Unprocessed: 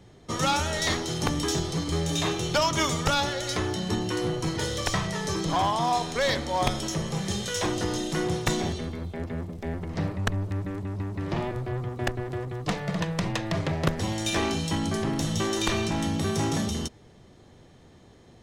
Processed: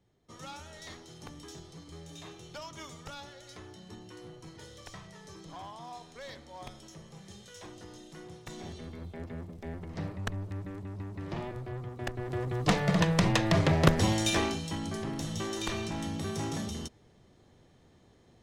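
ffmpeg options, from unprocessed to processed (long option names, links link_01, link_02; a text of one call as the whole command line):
ffmpeg -i in.wav -af "volume=3dB,afade=type=in:start_time=8.47:duration=0.57:silence=0.251189,afade=type=in:start_time=12.1:duration=0.61:silence=0.281838,afade=type=out:start_time=14.04:duration=0.56:silence=0.281838" out.wav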